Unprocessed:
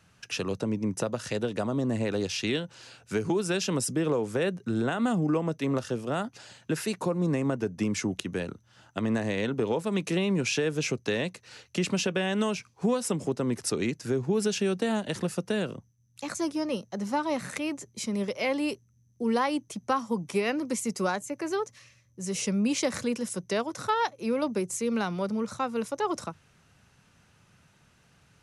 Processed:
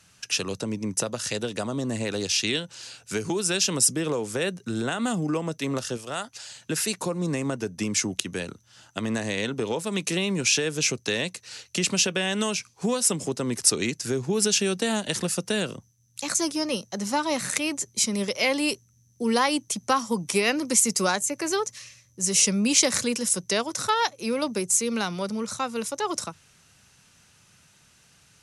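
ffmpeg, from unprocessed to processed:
-filter_complex "[0:a]asettb=1/sr,asplit=3[s0][s1][s2];[s0]atrim=end=5.974[s3];[s1]atrim=start=5.97:end=6.56,asetpts=PTS-STARTPTS,afade=t=in:d=0.004:c=qsin,afade=t=out:st=0.586:d=0.004:c=qsin,equalizer=f=220:w=0.67:g=-9.5[s4];[s2]atrim=start=6.556[s5];[s3][s4]acrossfade=d=0.004:c1=hsin:c2=qsin[s6];[s6][s5]acrossfade=d=0.004:c1=qsin:c2=hsin,equalizer=f=8300:t=o:w=2.8:g=13,dynaudnorm=f=530:g=21:m=3.76,volume=0.891"

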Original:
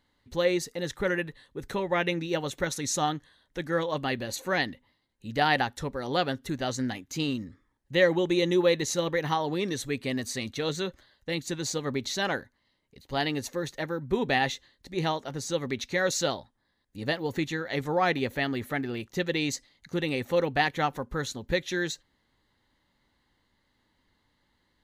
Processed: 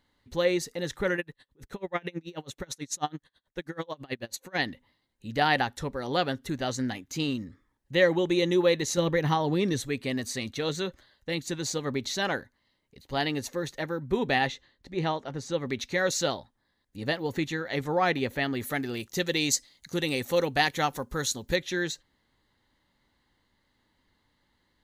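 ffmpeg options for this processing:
-filter_complex "[0:a]asplit=3[s0][s1][s2];[s0]afade=t=out:st=1.16:d=0.02[s3];[s1]aeval=exprs='val(0)*pow(10,-31*(0.5-0.5*cos(2*PI*9.2*n/s))/20)':c=same,afade=t=in:st=1.16:d=0.02,afade=t=out:st=4.57:d=0.02[s4];[s2]afade=t=in:st=4.57:d=0.02[s5];[s3][s4][s5]amix=inputs=3:normalize=0,asettb=1/sr,asplit=3[s6][s7][s8];[s6]atrim=end=8.974[s9];[s7]atrim=start=8.97:end=9.81,asetpts=PTS-STARTPTS,afade=t=in:d=0.004:c=qsin,afade=t=out:st=0.836:d=0.004:c=qsin,lowshelf=f=250:g=9[s10];[s8]atrim=start=9.806[s11];[s9][s10]acrossfade=d=0.004:c1=hsin:c2=qsin[s12];[s12][s11]acrossfade=d=0.004:c1=qsin:c2=hsin,asettb=1/sr,asplit=3[s13][s14][s15];[s13]atrim=end=14.474[s16];[s14]atrim=start=14.47:end=15.66,asetpts=PTS-STARTPTS,afade=t=in:d=0.004:c=qsin,afade=t=out:st=1.186:d=0.004:c=qsin,aemphasis=mode=reproduction:type=50kf[s17];[s15]atrim=start=15.656[s18];[s16][s17]acrossfade=d=0.004:c1=hsin:c2=qsin[s19];[s19][s18]acrossfade=d=0.004:c1=qsin:c2=hsin,asettb=1/sr,asplit=3[s20][s21][s22];[s20]atrim=end=18.604[s23];[s21]atrim=start=18.6:end=21.56,asetpts=PTS-STARTPTS,afade=t=in:d=0.004:c=qsin,afade=t=out:st=2.956:d=0.004:c=qsin,bass=f=250:g=-1,treble=f=4000:g=11[s24];[s22]atrim=start=21.556[s25];[s23][s24]acrossfade=d=0.004:c1=hsin:c2=qsin[s26];[s26][s25]acrossfade=d=0.004:c1=qsin:c2=hsin"

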